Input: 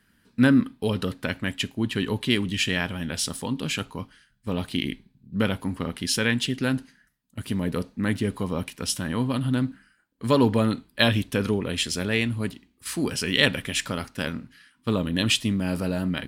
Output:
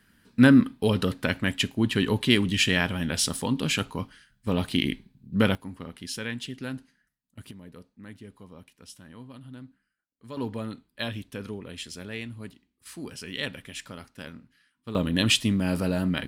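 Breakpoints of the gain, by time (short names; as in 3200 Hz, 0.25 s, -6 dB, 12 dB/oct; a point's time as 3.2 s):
+2 dB
from 5.55 s -10 dB
from 7.51 s -19.5 dB
from 10.37 s -12 dB
from 14.95 s +0.5 dB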